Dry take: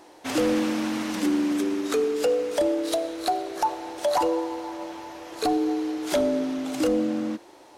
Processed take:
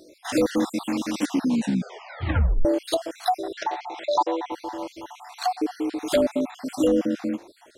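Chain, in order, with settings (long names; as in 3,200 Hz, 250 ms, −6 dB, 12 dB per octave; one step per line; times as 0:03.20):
time-frequency cells dropped at random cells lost 54%
0:01.29: tape stop 1.36 s
0:03.53–0:04.52: loudspeaker in its box 250–5,600 Hz, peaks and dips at 260 Hz −10 dB, 490 Hz −5 dB, 740 Hz +5 dB, 2,000 Hz +8 dB, 3,500 Hz +4 dB
level +3 dB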